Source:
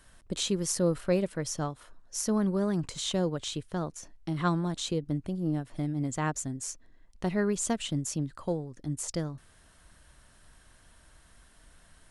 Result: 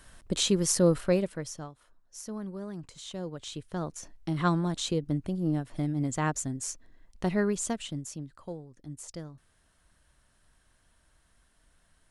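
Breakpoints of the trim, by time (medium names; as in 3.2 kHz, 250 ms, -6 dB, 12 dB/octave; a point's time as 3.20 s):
0.96 s +4 dB
1.40 s -3 dB
1.70 s -10.5 dB
3.07 s -10.5 dB
3.99 s +1.5 dB
7.37 s +1.5 dB
8.25 s -8.5 dB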